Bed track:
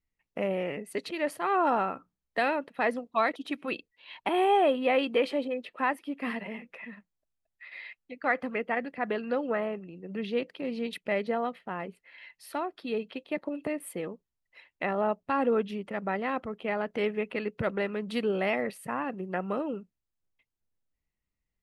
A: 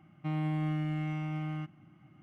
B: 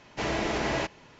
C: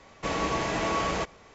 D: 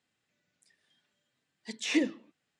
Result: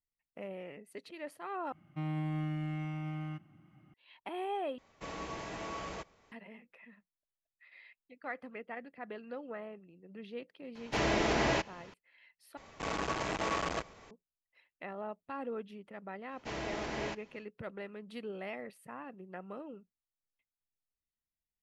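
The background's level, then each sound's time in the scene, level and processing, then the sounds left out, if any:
bed track -13.5 dB
1.72 replace with A -3.5 dB
4.78 replace with C -13.5 dB
10.75 add B -1 dB
12.57 replace with C -2.5 dB + core saturation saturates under 1400 Hz
16.28 add B -10 dB, fades 0.10 s
not used: D

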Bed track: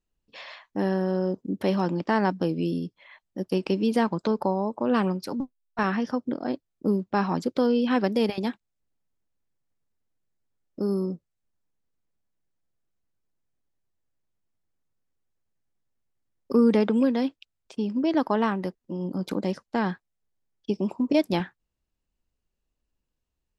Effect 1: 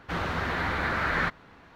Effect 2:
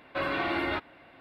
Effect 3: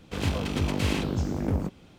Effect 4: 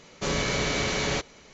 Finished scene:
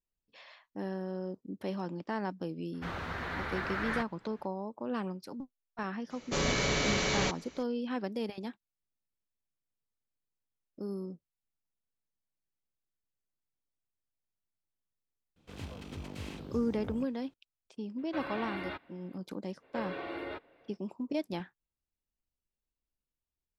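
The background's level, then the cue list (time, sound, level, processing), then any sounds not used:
bed track -12 dB
2.73 add 1 -8.5 dB, fades 0.02 s
6.1 add 4 -3 dB
15.36 add 3 -16 dB
17.98 add 2 -10 dB
19.59 add 2 -13.5 dB, fades 0.05 s + bell 470 Hz +13.5 dB 0.6 oct

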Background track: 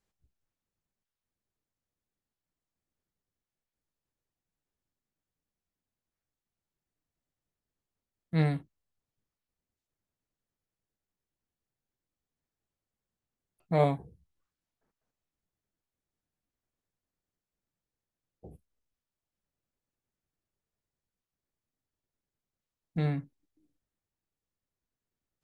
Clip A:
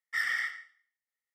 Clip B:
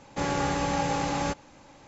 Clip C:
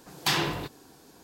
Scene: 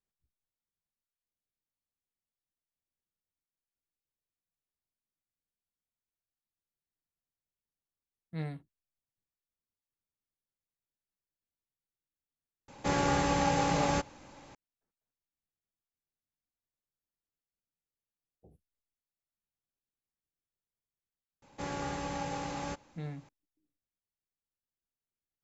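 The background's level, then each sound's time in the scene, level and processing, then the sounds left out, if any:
background track -11 dB
12.68 add B -1 dB
21.42 add B -9.5 dB
not used: A, C

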